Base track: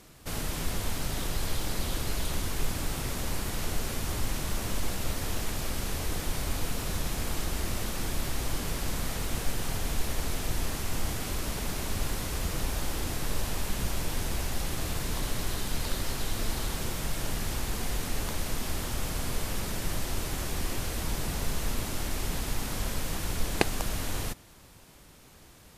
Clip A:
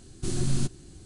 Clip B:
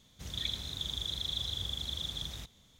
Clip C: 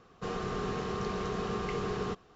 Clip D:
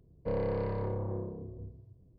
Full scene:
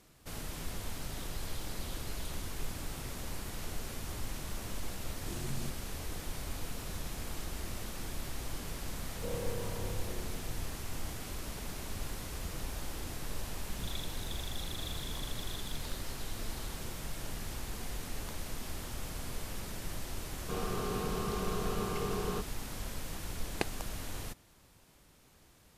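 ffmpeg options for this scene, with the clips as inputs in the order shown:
ffmpeg -i bed.wav -i cue0.wav -i cue1.wav -i cue2.wav -i cue3.wav -filter_complex "[0:a]volume=-8.5dB[link_01];[4:a]aeval=exprs='val(0)+0.5*0.00668*sgn(val(0))':channel_layout=same[link_02];[3:a]equalizer=frequency=1900:width=7.5:gain=-14[link_03];[1:a]atrim=end=1.05,asetpts=PTS-STARTPTS,volume=-13dB,afade=type=in:duration=0.004:curve=hsin,afade=type=out:start_time=1.046:duration=0.004:curve=hsin,adelay=5030[link_04];[link_02]atrim=end=2.18,asetpts=PTS-STARTPTS,volume=-8.5dB,afade=type=in:duration=0.004:curve=hsin,afade=type=out:start_time=2.176:duration=0.004:curve=hsin,adelay=8970[link_05];[2:a]atrim=end=2.79,asetpts=PTS-STARTPTS,volume=-9.5dB,afade=type=in:duration=0.004:curve=hsin,afade=type=out:start_time=2.786:duration=0.004:curve=hsin,adelay=13500[link_06];[link_03]atrim=end=2.35,asetpts=PTS-STARTPTS,volume=-2dB,afade=type=in:duration=0.004:curve=hsin,afade=type=out:start_time=2.346:duration=0.004:curve=hsin,adelay=20270[link_07];[link_01][link_04][link_05][link_06][link_07]amix=inputs=5:normalize=0" out.wav

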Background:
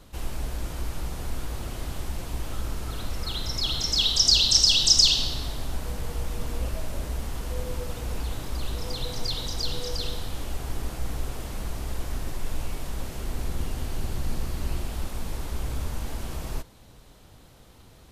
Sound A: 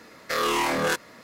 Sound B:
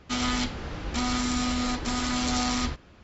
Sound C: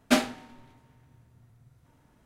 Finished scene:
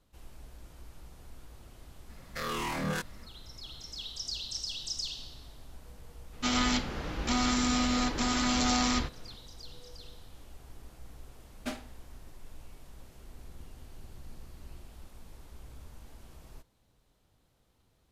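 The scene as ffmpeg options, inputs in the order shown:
ffmpeg -i bed.wav -i cue0.wav -i cue1.wav -i cue2.wav -filter_complex "[0:a]volume=-18.5dB[link_01];[1:a]lowshelf=frequency=250:width_type=q:width=1.5:gain=9.5[link_02];[2:a]equalizer=frequency=87:width=1.5:gain=-4.5[link_03];[link_02]atrim=end=1.23,asetpts=PTS-STARTPTS,volume=-10dB,afade=type=in:duration=0.05,afade=type=out:start_time=1.18:duration=0.05,adelay=2060[link_04];[link_03]atrim=end=3.03,asetpts=PTS-STARTPTS,volume=-0.5dB,afade=type=in:duration=0.004:curve=hsin,afade=type=out:start_time=3.026:duration=0.004:curve=hsin,adelay=6330[link_05];[3:a]atrim=end=2.25,asetpts=PTS-STARTPTS,volume=-15.5dB,afade=type=in:duration=0.004:curve=hsin,afade=type=out:start_time=2.246:duration=0.004:curve=hsin,adelay=11550[link_06];[link_01][link_04][link_05][link_06]amix=inputs=4:normalize=0" out.wav

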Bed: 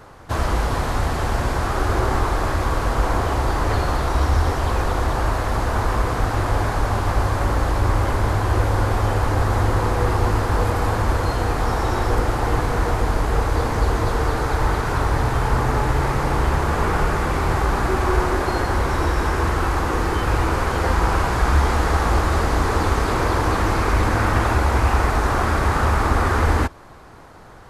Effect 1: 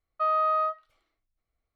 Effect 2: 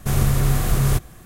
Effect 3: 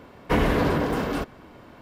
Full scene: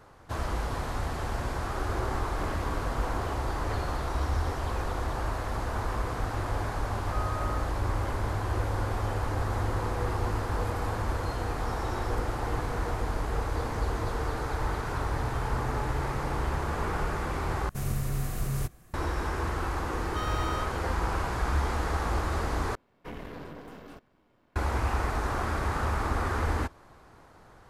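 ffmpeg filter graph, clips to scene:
ffmpeg -i bed.wav -i cue0.wav -i cue1.wav -i cue2.wav -filter_complex "[3:a]asplit=2[link_01][link_02];[1:a]asplit=2[link_03][link_04];[0:a]volume=-10.5dB[link_05];[2:a]equalizer=frequency=3400:width=4.6:gain=-4.5[link_06];[link_04]asoftclip=type=hard:threshold=-30.5dB[link_07];[link_02]aeval=exprs='if(lt(val(0),0),0.447*val(0),val(0))':channel_layout=same[link_08];[link_05]asplit=3[link_09][link_10][link_11];[link_09]atrim=end=17.694[link_12];[link_06]atrim=end=1.25,asetpts=PTS-STARTPTS,volume=-12dB[link_13];[link_10]atrim=start=18.936:end=22.754[link_14];[link_08]atrim=end=1.81,asetpts=PTS-STARTPTS,volume=-17.5dB[link_15];[link_11]atrim=start=24.556[link_16];[link_01]atrim=end=1.81,asetpts=PTS-STARTPTS,volume=-18dB,afade=type=in:duration=0.004:curve=hsin,afade=type=out:start_time=1.806:duration=0.004:curve=hsin,adelay=2080[link_17];[link_03]atrim=end=1.75,asetpts=PTS-STARTPTS,volume=-13.5dB,afade=type=in:duration=0.004:curve=hsin,afade=type=out:start_time=1.746:duration=0.004:curve=hsin,adelay=6920[link_18];[link_07]atrim=end=1.75,asetpts=PTS-STARTPTS,volume=-5dB,afade=type=in:duration=0.004:curve=hsin,afade=type=out:start_time=1.746:duration=0.004:curve=hsin,adelay=19950[link_19];[link_12][link_13]acrossfade=duration=0.004:curve1=hsin:curve2=hsin[link_20];[link_20][link_14]acrossfade=duration=0.004:curve1=hsin:curve2=hsin[link_21];[link_21][link_15]acrossfade=duration=0.004:curve1=hsin:curve2=hsin[link_22];[link_22][link_16]acrossfade=duration=0.004:curve1=hsin:curve2=hsin[link_23];[link_23][link_17][link_18][link_19]amix=inputs=4:normalize=0" out.wav

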